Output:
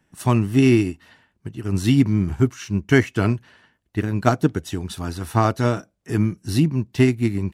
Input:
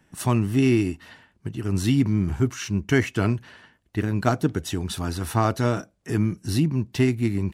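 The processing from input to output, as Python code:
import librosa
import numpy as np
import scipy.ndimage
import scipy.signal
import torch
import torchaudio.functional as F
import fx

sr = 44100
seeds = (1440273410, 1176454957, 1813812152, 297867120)

y = fx.upward_expand(x, sr, threshold_db=-35.0, expansion=1.5)
y = y * librosa.db_to_amplitude(5.0)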